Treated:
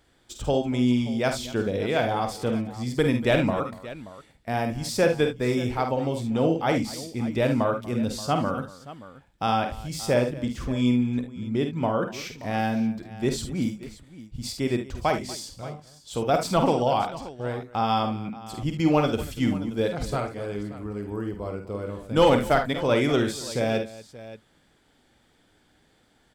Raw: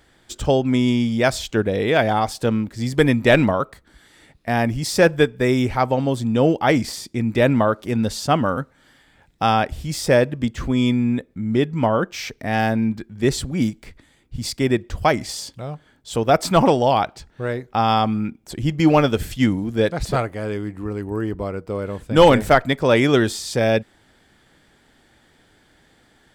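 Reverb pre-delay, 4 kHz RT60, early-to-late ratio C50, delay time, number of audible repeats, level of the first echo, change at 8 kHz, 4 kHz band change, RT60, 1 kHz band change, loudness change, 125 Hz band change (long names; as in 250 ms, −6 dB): no reverb audible, no reverb audible, no reverb audible, 49 ms, 3, −7.0 dB, −6.0 dB, −6.0 dB, no reverb audible, −6.0 dB, −6.0 dB, −6.0 dB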